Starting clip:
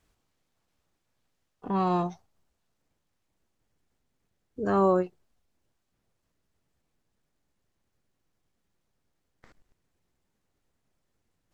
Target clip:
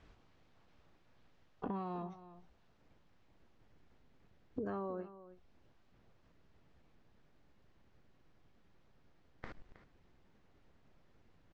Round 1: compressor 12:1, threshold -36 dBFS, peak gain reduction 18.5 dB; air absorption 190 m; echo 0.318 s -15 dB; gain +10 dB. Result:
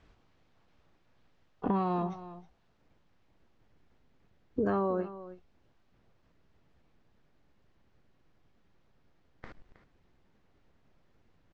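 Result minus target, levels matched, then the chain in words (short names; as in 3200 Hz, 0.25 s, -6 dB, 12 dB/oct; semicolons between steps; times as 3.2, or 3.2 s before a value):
compressor: peak gain reduction -11 dB
compressor 12:1, threshold -48 dBFS, peak gain reduction 29.5 dB; air absorption 190 m; echo 0.318 s -15 dB; gain +10 dB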